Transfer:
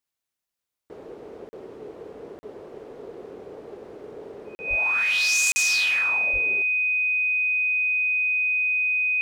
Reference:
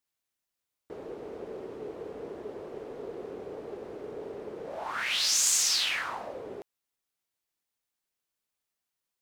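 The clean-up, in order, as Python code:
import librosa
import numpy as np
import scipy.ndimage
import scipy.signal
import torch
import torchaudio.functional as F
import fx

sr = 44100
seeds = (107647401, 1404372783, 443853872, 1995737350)

y = fx.notch(x, sr, hz=2500.0, q=30.0)
y = fx.fix_deplosive(y, sr, at_s=(4.69, 6.32))
y = fx.fix_interpolate(y, sr, at_s=(1.49, 2.39, 4.55, 5.52), length_ms=40.0)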